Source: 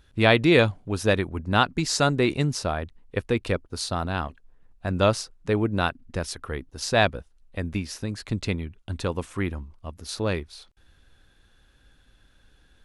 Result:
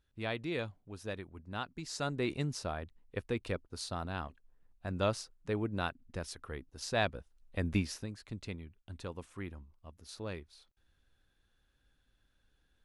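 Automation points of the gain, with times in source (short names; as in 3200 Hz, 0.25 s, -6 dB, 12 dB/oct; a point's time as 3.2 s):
1.72 s -19 dB
2.3 s -11 dB
7.06 s -11 dB
7.8 s -2 dB
8.18 s -15 dB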